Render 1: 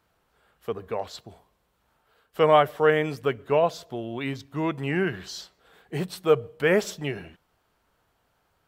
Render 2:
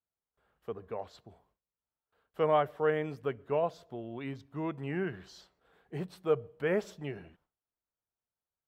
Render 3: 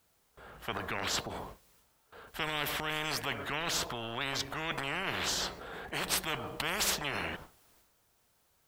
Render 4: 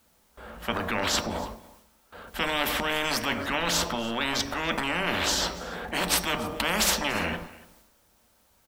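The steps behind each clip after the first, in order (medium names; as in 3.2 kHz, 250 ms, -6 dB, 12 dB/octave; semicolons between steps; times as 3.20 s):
gate with hold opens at -55 dBFS; treble shelf 2.6 kHz -11 dB; trim -8 dB
transient shaper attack -1 dB, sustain +7 dB; spectrum-flattening compressor 10:1
delay 287 ms -20.5 dB; on a send at -7 dB: reverberation RT60 0.40 s, pre-delay 3 ms; on the sum: trim +6.5 dB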